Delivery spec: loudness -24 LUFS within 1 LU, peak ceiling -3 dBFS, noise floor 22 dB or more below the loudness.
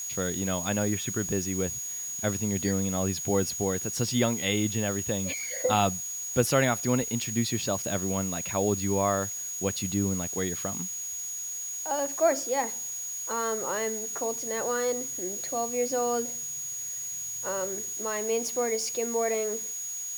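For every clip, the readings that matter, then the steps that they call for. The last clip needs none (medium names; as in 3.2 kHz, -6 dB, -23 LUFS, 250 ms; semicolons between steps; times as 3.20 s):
steady tone 6.7 kHz; tone level -33 dBFS; noise floor -36 dBFS; noise floor target -51 dBFS; loudness -28.5 LUFS; peak level -9.5 dBFS; loudness target -24.0 LUFS
-> band-stop 6.7 kHz, Q 30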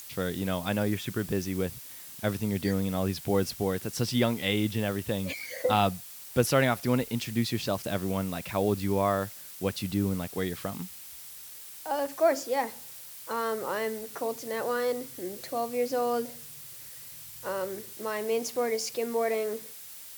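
steady tone not found; noise floor -45 dBFS; noise floor target -52 dBFS
-> noise reduction 7 dB, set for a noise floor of -45 dBFS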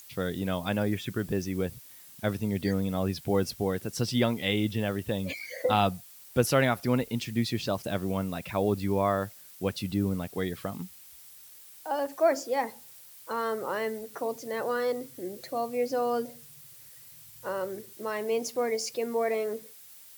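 noise floor -51 dBFS; noise floor target -52 dBFS
-> noise reduction 6 dB, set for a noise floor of -51 dBFS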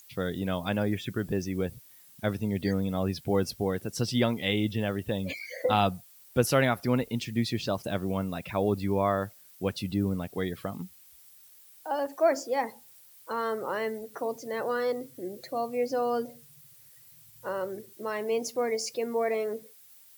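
noise floor -55 dBFS; loudness -30.0 LUFS; peak level -10.0 dBFS; loudness target -24.0 LUFS
-> trim +6 dB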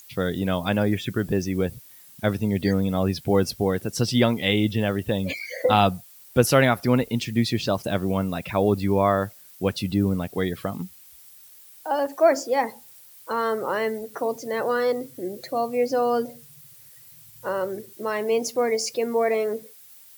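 loudness -24.0 LUFS; peak level -4.0 dBFS; noise floor -49 dBFS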